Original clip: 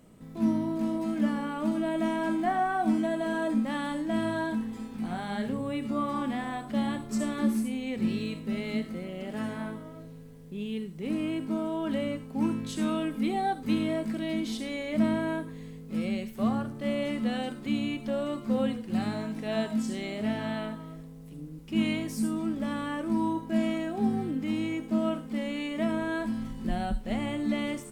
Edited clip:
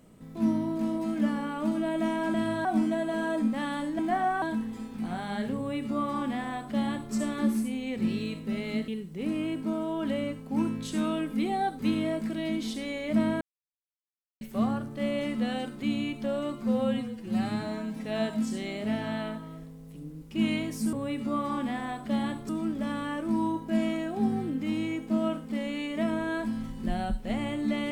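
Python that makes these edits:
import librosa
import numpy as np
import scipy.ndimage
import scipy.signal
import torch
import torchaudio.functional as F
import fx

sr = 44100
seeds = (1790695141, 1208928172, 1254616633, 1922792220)

y = fx.edit(x, sr, fx.swap(start_s=2.34, length_s=0.43, other_s=4.11, other_length_s=0.31),
    fx.duplicate(start_s=5.57, length_s=1.56, to_s=22.3),
    fx.cut(start_s=8.88, length_s=1.84),
    fx.silence(start_s=15.25, length_s=1.0),
    fx.stretch_span(start_s=18.47, length_s=0.94, factor=1.5), tone=tone)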